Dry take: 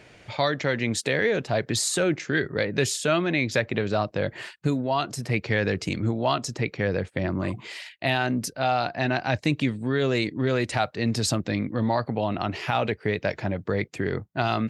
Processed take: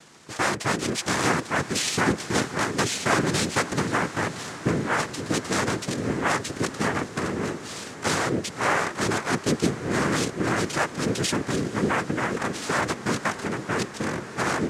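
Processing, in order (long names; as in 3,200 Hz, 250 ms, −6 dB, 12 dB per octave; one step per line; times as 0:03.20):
cochlear-implant simulation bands 3
feedback delay with all-pass diffusion 554 ms, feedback 79%, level −16 dB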